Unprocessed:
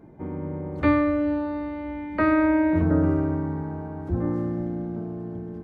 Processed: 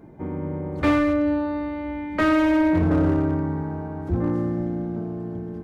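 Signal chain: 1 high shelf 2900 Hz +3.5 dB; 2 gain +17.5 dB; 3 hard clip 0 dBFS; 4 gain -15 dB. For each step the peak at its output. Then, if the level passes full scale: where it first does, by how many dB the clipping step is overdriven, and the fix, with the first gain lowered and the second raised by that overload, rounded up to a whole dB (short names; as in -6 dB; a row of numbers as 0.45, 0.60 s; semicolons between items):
-9.5, +8.0, 0.0, -15.0 dBFS; step 2, 8.0 dB; step 2 +9.5 dB, step 4 -7 dB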